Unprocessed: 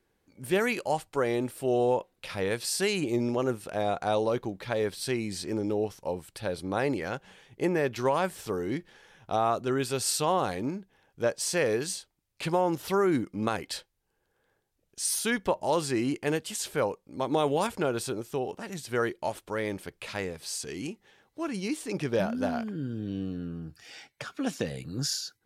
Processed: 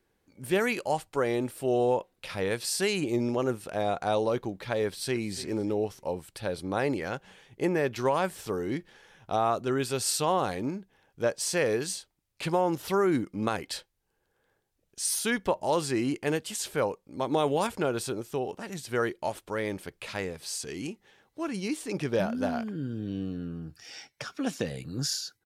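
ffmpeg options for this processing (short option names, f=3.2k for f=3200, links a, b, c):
-filter_complex "[0:a]asplit=2[a][b];[b]afade=t=in:st=4.85:d=0.01,afade=t=out:st=5.32:d=0.01,aecho=0:1:290|580|870:0.16788|0.0419701|0.0104925[c];[a][c]amix=inputs=2:normalize=0,asettb=1/sr,asplit=3[d][e][f];[d]atrim=end=23.794[g];[e]atrim=start=23.79:end=24.38,asetpts=PTS-STARTPTS,afade=t=in:d=0.004:c=qsin,afade=t=out:st=0.586:d=0.004:c=qsin,equalizer=f=5.5k:w=5.9:g=10[h];[f]atrim=start=24.376[i];[g][h]acrossfade=d=0.004:c1=hsin:c2=qsin[j];[j][i]acrossfade=d=0.004:c1=qsin:c2=hsin"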